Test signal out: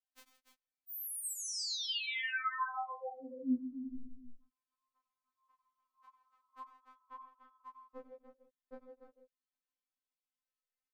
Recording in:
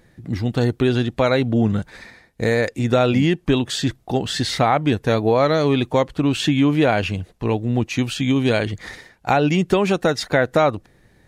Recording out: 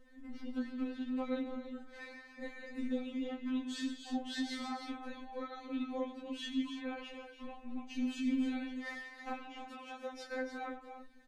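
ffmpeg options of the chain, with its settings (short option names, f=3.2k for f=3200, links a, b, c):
-af "highshelf=f=5k:g=-11,acompressor=threshold=-31dB:ratio=10,tremolo=f=120:d=0.519,equalizer=f=640:w=5.3:g=-12.5,aecho=1:1:93|96|132|163|290|318:0.188|0.158|0.158|0.178|0.335|0.251,flanger=delay=20:depth=6.1:speed=1.7,afftfilt=real='re*3.46*eq(mod(b,12),0)':imag='im*3.46*eq(mod(b,12),0)':win_size=2048:overlap=0.75,volume=1dB"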